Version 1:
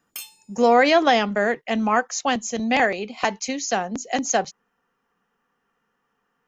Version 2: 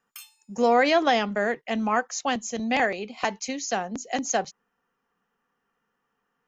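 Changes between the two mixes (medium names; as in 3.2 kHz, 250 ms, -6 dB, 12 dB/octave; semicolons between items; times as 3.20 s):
speech -4.0 dB; background: add ladder high-pass 1 kHz, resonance 45%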